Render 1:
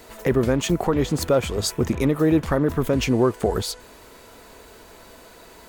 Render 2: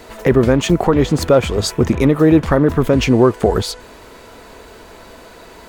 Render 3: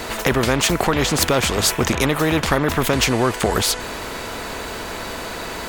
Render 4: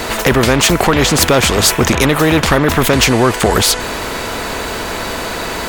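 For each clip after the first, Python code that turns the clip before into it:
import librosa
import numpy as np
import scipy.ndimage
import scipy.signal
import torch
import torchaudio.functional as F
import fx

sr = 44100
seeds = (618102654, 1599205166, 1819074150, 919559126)

y1 = fx.high_shelf(x, sr, hz=7100.0, db=-9.5)
y1 = y1 * 10.0 ** (7.5 / 20.0)
y2 = fx.spectral_comp(y1, sr, ratio=2.0)
y3 = 10.0 ** (-9.0 / 20.0) * np.tanh(y2 / 10.0 ** (-9.0 / 20.0))
y3 = y3 * 10.0 ** (8.0 / 20.0)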